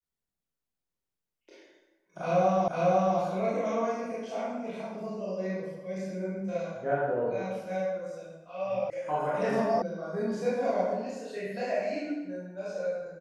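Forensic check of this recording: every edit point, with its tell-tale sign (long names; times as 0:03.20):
0:02.68: the same again, the last 0.5 s
0:08.90: cut off before it has died away
0:09.82: cut off before it has died away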